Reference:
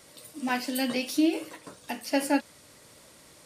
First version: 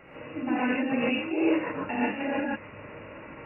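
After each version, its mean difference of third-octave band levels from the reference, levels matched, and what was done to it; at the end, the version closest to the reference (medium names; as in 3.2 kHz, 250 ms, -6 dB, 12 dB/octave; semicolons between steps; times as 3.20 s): 14.5 dB: compressor with a negative ratio -34 dBFS, ratio -1; brick-wall FIR low-pass 2.9 kHz; gated-style reverb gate 170 ms rising, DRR -7 dB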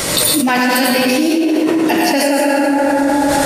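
10.5 dB: spectral noise reduction 7 dB; plate-style reverb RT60 2.1 s, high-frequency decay 0.55×, pre-delay 75 ms, DRR -4 dB; level flattener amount 100%; trim +2 dB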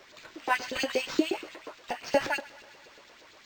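7.0 dB: LFO high-pass saw up 8.4 Hz 330–4600 Hz; on a send: thinning echo 128 ms, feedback 72%, high-pass 390 Hz, level -21 dB; on the sum: decimation joined by straight lines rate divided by 4×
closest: third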